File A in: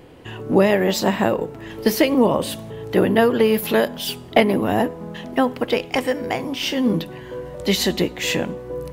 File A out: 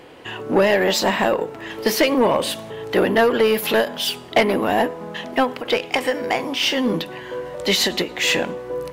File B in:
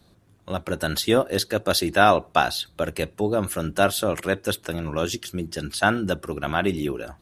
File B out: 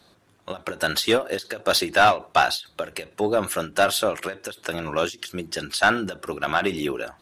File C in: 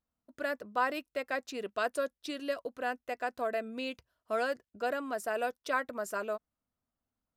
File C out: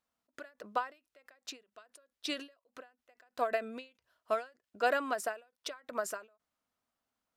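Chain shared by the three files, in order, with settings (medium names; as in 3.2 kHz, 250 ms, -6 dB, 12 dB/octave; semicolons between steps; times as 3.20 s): overdrive pedal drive 17 dB, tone 5.7 kHz, clips at -1 dBFS; endings held to a fixed fall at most 200 dB/s; trim -4.5 dB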